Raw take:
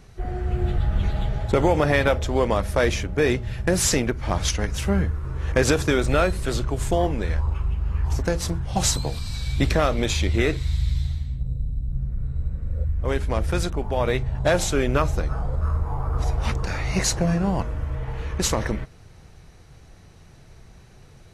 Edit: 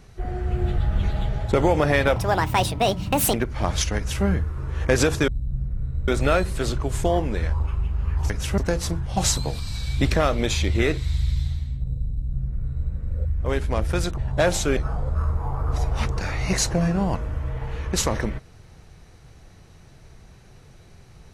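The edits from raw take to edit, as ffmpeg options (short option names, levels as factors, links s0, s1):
-filter_complex "[0:a]asplit=9[s0][s1][s2][s3][s4][s5][s6][s7][s8];[s0]atrim=end=2.164[s9];[s1]atrim=start=2.16:end=4.01,asetpts=PTS-STARTPTS,asetrate=69237,aresample=44100[s10];[s2]atrim=start=4.006:end=5.952[s11];[s3]atrim=start=11.688:end=12.492[s12];[s4]atrim=start=5.948:end=8.172[s13];[s5]atrim=start=4.638:end=4.922[s14];[s6]atrim=start=8.168:end=13.772[s15];[s7]atrim=start=14.248:end=14.842[s16];[s8]atrim=start=15.228[s17];[s9][s10]acrossfade=d=0.004:c1=hsin:c2=hsin[s18];[s18][s11]acrossfade=d=0.004:c1=hsin:c2=hsin[s19];[s19][s12]acrossfade=d=0.004:c1=hsin:c2=hsin[s20];[s20][s13]acrossfade=d=0.004:c1=hsin:c2=hsin[s21];[s21][s14]acrossfade=d=0.004:c1=hsin:c2=hsin[s22];[s22][s15]acrossfade=d=0.004:c1=hsin:c2=hsin[s23];[s23][s16]acrossfade=d=0.004:c1=hsin:c2=hsin[s24];[s24][s17]acrossfade=d=0.004:c1=hsin:c2=hsin"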